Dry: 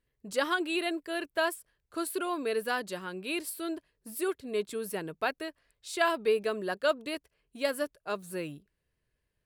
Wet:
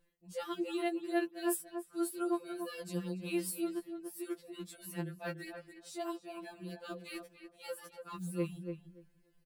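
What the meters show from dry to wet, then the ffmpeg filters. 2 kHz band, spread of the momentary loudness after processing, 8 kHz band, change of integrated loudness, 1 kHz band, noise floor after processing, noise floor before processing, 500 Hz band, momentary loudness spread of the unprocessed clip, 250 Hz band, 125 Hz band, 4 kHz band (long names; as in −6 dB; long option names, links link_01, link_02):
−13.0 dB, 12 LU, −3.0 dB, −7.0 dB, −10.0 dB, −68 dBFS, −81 dBFS, −8.5 dB, 12 LU, −0.5 dB, +5.0 dB, −11.5 dB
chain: -filter_complex "[0:a]acrossover=split=360|1500[link_01][link_02][link_03];[link_03]acrusher=bits=6:mode=log:mix=0:aa=0.000001[link_04];[link_01][link_02][link_04]amix=inputs=3:normalize=0,lowshelf=frequency=480:gain=9,areverse,acompressor=threshold=-38dB:ratio=20,areverse,highshelf=frequency=4600:gain=4.5,asplit=2[link_05][link_06];[link_06]adelay=288,lowpass=frequency=1600:poles=1,volume=-6.5dB,asplit=2[link_07][link_08];[link_08]adelay=288,lowpass=frequency=1600:poles=1,volume=0.16,asplit=2[link_09][link_10];[link_10]adelay=288,lowpass=frequency=1600:poles=1,volume=0.16[link_11];[link_05][link_07][link_09][link_11]amix=inputs=4:normalize=0,afftfilt=real='re*2.83*eq(mod(b,8),0)':imag='im*2.83*eq(mod(b,8),0)':win_size=2048:overlap=0.75,volume=4dB"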